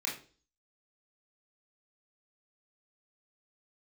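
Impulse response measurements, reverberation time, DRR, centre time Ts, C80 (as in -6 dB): 0.40 s, -4.0 dB, 29 ms, 13.5 dB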